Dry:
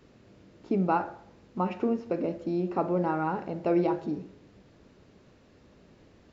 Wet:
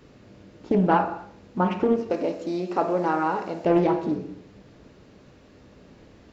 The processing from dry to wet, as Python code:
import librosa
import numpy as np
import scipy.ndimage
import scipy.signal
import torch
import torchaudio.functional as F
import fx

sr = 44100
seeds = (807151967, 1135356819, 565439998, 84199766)

y = fx.bass_treble(x, sr, bass_db=-11, treble_db=10, at=(2.1, 3.65))
y = fx.rev_gated(y, sr, seeds[0], gate_ms=290, shape='falling', drr_db=8.0)
y = fx.doppler_dist(y, sr, depth_ms=0.37)
y = F.gain(torch.from_numpy(y), 5.5).numpy()